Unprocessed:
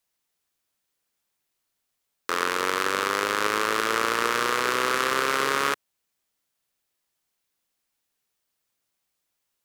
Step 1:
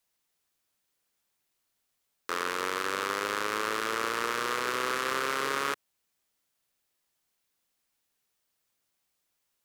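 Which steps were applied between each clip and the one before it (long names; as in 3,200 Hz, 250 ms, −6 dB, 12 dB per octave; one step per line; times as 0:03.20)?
brickwall limiter −14.5 dBFS, peak gain reduction 9 dB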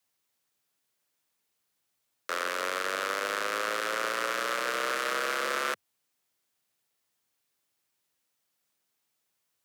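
frequency shifter +83 Hz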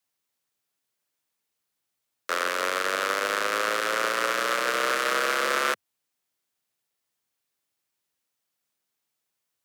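expander for the loud parts 1.5 to 1, over −46 dBFS
level +6 dB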